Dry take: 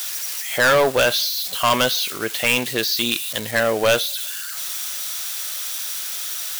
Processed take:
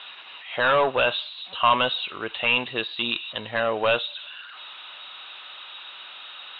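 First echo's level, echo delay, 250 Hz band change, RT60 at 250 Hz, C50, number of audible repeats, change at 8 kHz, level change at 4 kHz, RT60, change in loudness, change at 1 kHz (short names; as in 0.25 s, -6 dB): none, none, -7.5 dB, none, none, none, under -40 dB, -5.5 dB, none, -3.5 dB, -0.5 dB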